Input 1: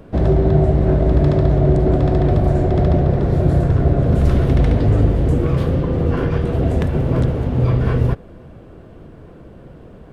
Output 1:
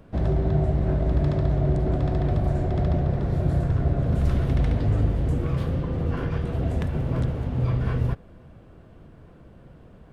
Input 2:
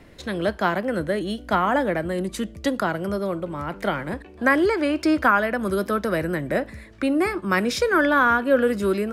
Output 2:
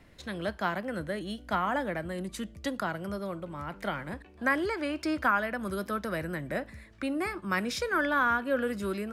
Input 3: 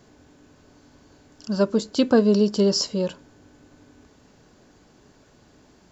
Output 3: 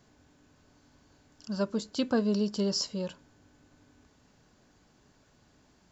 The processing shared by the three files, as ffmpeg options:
-af "equalizer=f=400:t=o:w=1.3:g=-5,volume=-7dB"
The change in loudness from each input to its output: -8.0, -9.0, -9.5 LU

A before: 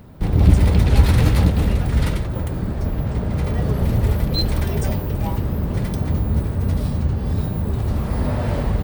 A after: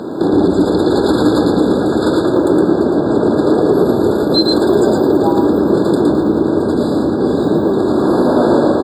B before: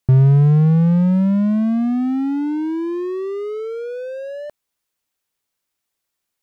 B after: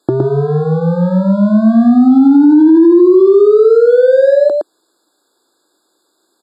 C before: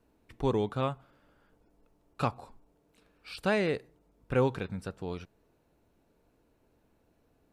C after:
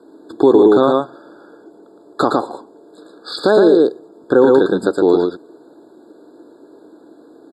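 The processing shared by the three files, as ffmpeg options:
-filter_complex "[0:a]lowpass=9k,acompressor=threshold=-31dB:ratio=2.5,highpass=f=330:t=q:w=4,asplit=2[a][b];[b]aecho=0:1:114:0.668[c];[a][c]amix=inputs=2:normalize=0,alimiter=level_in=20.5dB:limit=-1dB:release=50:level=0:latency=1,afftfilt=real='re*eq(mod(floor(b*sr/1024/1700),2),0)':imag='im*eq(mod(floor(b*sr/1024/1700),2),0)':win_size=1024:overlap=0.75,volume=-1dB"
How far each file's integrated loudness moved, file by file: +7.0, +8.5, +18.5 LU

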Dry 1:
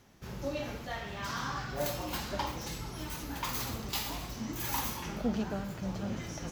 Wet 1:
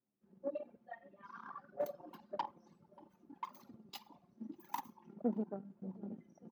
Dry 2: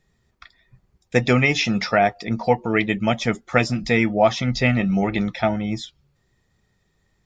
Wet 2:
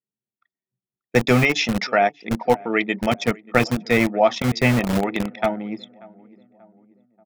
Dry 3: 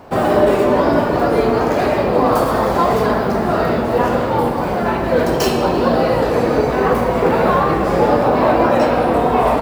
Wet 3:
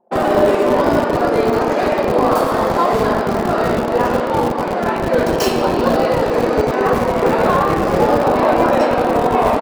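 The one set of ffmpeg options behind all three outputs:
-filter_complex "[0:a]anlmdn=100,acrossover=split=190[a][b];[a]acrusher=bits=3:mix=0:aa=0.000001[c];[b]asplit=2[d][e];[e]adelay=585,lowpass=f=1.2k:p=1,volume=-21.5dB,asplit=2[f][g];[g]adelay=585,lowpass=f=1.2k:p=1,volume=0.53,asplit=2[h][i];[i]adelay=585,lowpass=f=1.2k:p=1,volume=0.53,asplit=2[j][k];[k]adelay=585,lowpass=f=1.2k:p=1,volume=0.53[l];[d][f][h][j][l]amix=inputs=5:normalize=0[m];[c][m]amix=inputs=2:normalize=0"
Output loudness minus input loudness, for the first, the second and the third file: -9.5, 0.0, 0.0 LU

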